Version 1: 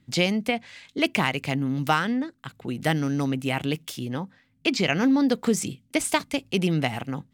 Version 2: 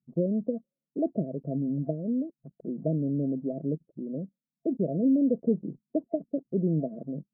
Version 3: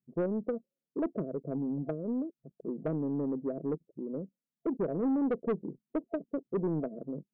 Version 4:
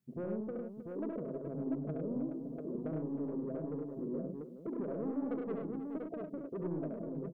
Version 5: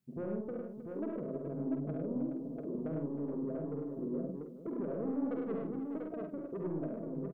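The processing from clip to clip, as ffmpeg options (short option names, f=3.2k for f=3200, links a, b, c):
-af "afftfilt=real='re*between(b*sr/4096,130,680)':imag='im*between(b*sr/4096,130,680)':win_size=4096:overlap=0.75,anlmdn=0.0631,volume=-2.5dB"
-af "equalizer=f=420:t=o:w=1.1:g=10,asoftclip=type=tanh:threshold=-17.5dB,volume=-7dB"
-filter_complex "[0:a]acompressor=threshold=-35dB:ratio=6,alimiter=level_in=15.5dB:limit=-24dB:level=0:latency=1:release=208,volume=-15.5dB,asplit=2[a][b];[b]aecho=0:1:69|102|313|422|692:0.631|0.631|0.237|0.316|0.596[c];[a][c]amix=inputs=2:normalize=0,volume=5dB"
-filter_complex "[0:a]asplit=2[a][b];[b]adelay=49,volume=-7dB[c];[a][c]amix=inputs=2:normalize=0"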